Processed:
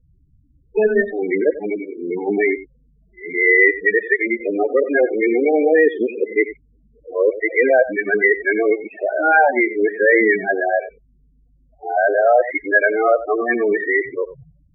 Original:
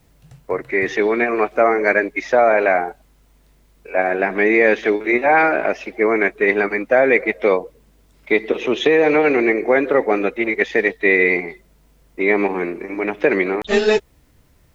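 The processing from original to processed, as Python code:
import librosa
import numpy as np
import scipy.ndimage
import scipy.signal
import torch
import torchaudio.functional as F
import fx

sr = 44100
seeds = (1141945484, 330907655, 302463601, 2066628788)

p1 = x[::-1].copy()
p2 = fx.spec_topn(p1, sr, count=8)
p3 = fx.high_shelf_res(p2, sr, hz=2600.0, db=-11.5, q=3.0)
y = p3 + fx.echo_single(p3, sr, ms=92, db=-15.0, dry=0)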